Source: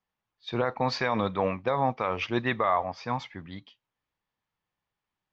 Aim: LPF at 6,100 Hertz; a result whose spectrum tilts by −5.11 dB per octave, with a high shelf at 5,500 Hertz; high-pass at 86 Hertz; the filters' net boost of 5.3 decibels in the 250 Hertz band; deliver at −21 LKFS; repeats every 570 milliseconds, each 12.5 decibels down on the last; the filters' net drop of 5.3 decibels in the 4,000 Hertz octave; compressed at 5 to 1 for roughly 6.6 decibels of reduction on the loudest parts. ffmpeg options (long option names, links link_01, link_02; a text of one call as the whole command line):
ffmpeg -i in.wav -af "highpass=86,lowpass=6100,equalizer=frequency=250:width_type=o:gain=6.5,equalizer=frequency=4000:width_type=o:gain=-8,highshelf=frequency=5500:gain=6,acompressor=threshold=-26dB:ratio=5,aecho=1:1:570|1140|1710:0.237|0.0569|0.0137,volume=11.5dB" out.wav